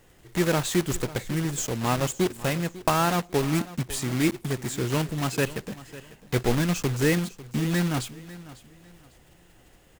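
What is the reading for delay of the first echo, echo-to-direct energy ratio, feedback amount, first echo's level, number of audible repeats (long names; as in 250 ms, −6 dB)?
548 ms, −17.0 dB, 29%, −17.5 dB, 2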